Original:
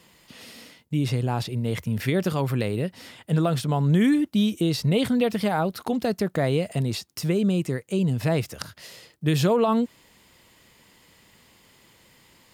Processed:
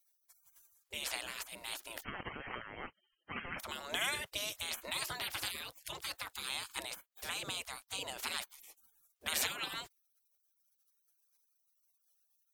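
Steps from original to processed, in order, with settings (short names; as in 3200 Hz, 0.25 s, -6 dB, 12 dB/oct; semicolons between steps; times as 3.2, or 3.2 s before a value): 2.02–3.6 inverted band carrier 2900 Hz; spectral gate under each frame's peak -30 dB weak; gain +4.5 dB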